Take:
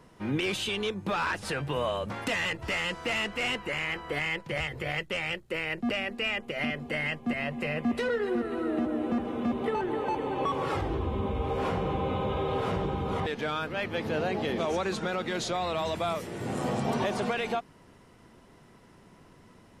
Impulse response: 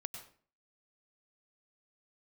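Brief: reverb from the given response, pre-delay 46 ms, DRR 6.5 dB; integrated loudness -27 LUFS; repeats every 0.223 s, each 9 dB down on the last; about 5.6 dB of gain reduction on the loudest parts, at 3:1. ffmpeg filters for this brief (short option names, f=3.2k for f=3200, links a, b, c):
-filter_complex "[0:a]acompressor=threshold=-32dB:ratio=3,aecho=1:1:223|446|669|892:0.355|0.124|0.0435|0.0152,asplit=2[a][b];[1:a]atrim=start_sample=2205,adelay=46[c];[b][c]afir=irnorm=-1:irlink=0,volume=-4.5dB[d];[a][d]amix=inputs=2:normalize=0,volume=6.5dB"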